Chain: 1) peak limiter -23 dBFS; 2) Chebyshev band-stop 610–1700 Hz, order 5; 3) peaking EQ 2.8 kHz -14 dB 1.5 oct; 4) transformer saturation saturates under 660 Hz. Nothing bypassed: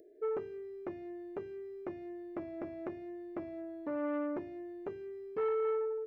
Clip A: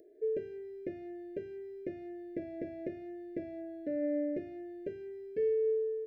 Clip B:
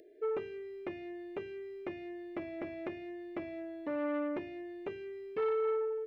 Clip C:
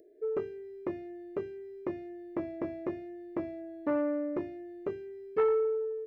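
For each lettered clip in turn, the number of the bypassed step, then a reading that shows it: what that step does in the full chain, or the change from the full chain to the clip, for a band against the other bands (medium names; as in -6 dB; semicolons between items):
4, crest factor change -1.5 dB; 3, 2 kHz band +4.5 dB; 1, mean gain reduction 2.0 dB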